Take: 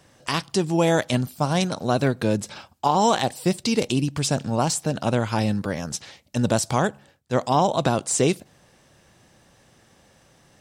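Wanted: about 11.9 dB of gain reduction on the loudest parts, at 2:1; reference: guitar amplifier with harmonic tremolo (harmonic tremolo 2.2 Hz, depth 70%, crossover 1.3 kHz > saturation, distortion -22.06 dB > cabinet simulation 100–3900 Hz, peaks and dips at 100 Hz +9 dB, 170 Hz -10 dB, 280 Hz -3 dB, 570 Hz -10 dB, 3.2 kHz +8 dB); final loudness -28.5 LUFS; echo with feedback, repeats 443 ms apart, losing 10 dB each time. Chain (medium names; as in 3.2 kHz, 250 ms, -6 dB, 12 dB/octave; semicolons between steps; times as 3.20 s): compression 2:1, threshold -38 dBFS; feedback delay 443 ms, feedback 32%, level -10 dB; harmonic tremolo 2.2 Hz, depth 70%, crossover 1.3 kHz; saturation -23.5 dBFS; cabinet simulation 100–3900 Hz, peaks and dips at 100 Hz +9 dB, 170 Hz -10 dB, 280 Hz -3 dB, 570 Hz -10 dB, 3.2 kHz +8 dB; trim +11.5 dB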